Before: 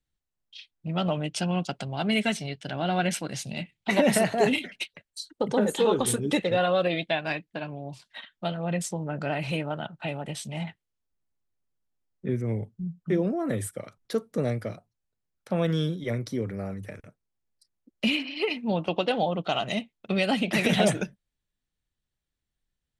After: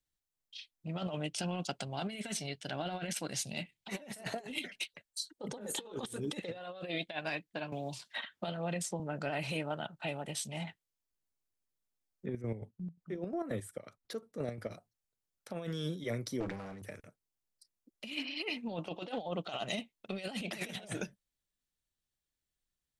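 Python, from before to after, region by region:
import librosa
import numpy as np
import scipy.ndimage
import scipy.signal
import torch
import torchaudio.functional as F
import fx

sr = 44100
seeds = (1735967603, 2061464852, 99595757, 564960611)

y = fx.chain(x, sr, fx.highpass(hz=44.0, slope=12),
    fx.high_shelf(hz=10000.0, db=-6.0),
    fx.band_squash(depth_pct=70), at=(7.72, 9.0))
y = fx.chain(y, sr, fx.high_shelf(hz=4500.0, db=-8.5),
    fx.chopper(hz=5.6, depth_pct=60, duty_pct=50), at=(12.26, 14.71))
y = fx.chain(y, sr, fx.lower_of_two(delay_ms=6.2),
    fx.air_absorb(metres=63.0),
    fx.sustainer(db_per_s=43.0), at=(16.4, 16.82))
y = fx.bass_treble(y, sr, bass_db=-4, treble_db=6)
y = fx.over_compress(y, sr, threshold_db=-29.0, ratio=-0.5)
y = F.gain(torch.from_numpy(y), -8.0).numpy()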